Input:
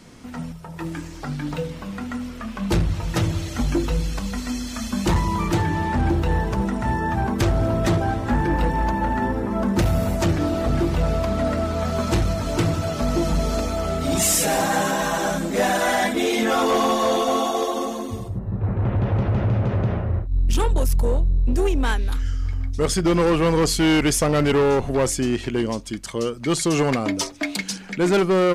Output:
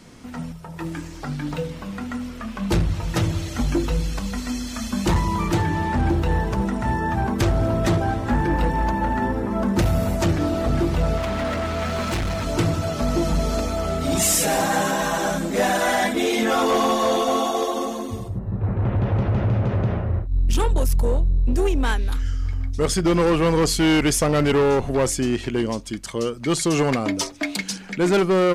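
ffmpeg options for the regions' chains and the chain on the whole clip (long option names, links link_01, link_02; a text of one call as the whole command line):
ffmpeg -i in.wav -filter_complex "[0:a]asettb=1/sr,asplit=3[link_01][link_02][link_03];[link_01]atrim=end=11.174[link_04];[link_02]atrim=start=11.17:end=12.45,asetpts=PTS-STARTPTS,afade=type=in:duration=0.004:curve=qsin,afade=type=out:start_time=1.276:duration=0.004:curve=qsin,equalizer=frequency=2300:width=0.86:gain=7.5,asoftclip=type=hard:threshold=-21.5dB[link_05];[link_03]atrim=start=12.446[link_06];[link_04][link_05]acrossfade=duration=0.004:curve1=hsin:curve2=qsin[link_07];[link_07][link_06]acrossfade=duration=0.004:curve1=qsin:curve2=hsin" out.wav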